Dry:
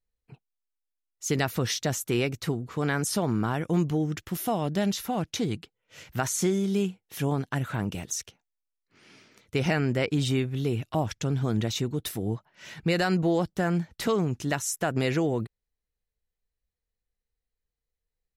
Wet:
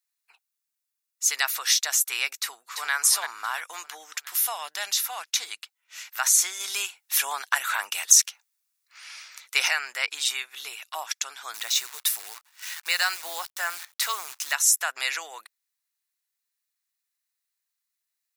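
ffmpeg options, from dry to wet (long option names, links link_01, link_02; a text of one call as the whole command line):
ffmpeg -i in.wav -filter_complex "[0:a]asplit=2[link_01][link_02];[link_02]afade=type=in:start_time=2.4:duration=0.01,afade=type=out:start_time=2.92:duration=0.01,aecho=0:1:340|680|1020|1360|1700:0.501187|0.225534|0.10149|0.0456707|0.0205518[link_03];[link_01][link_03]amix=inputs=2:normalize=0,asplit=3[link_04][link_05][link_06];[link_04]afade=type=out:start_time=6.59:duration=0.02[link_07];[link_05]acontrast=61,afade=type=in:start_time=6.59:duration=0.02,afade=type=out:start_time=9.67:duration=0.02[link_08];[link_06]afade=type=in:start_time=9.67:duration=0.02[link_09];[link_07][link_08][link_09]amix=inputs=3:normalize=0,asettb=1/sr,asplit=3[link_10][link_11][link_12];[link_10]atrim=end=11.544[link_13];[link_11]atrim=start=11.54:end=14.53,asetpts=PTS-STARTPTS,afade=type=in:duration=0.004:curve=qsin,afade=type=out:start_time=2.986:duration=0.004:curve=qsin,acrusher=bits=8:dc=4:mix=0:aa=0.000001[link_14];[link_12]atrim=start=14.526[link_15];[link_13][link_14]acrossfade=duration=0.004:curve1=hsin:curve2=qsin[link_16];[link_16][link_15]acrossfade=duration=0.004:curve1=qsin:curve2=hsin,highpass=frequency=1000:width=0.5412,highpass=frequency=1000:width=1.3066,highshelf=frequency=4300:gain=9,bandreject=frequency=3100:width=16,volume=4.5dB" out.wav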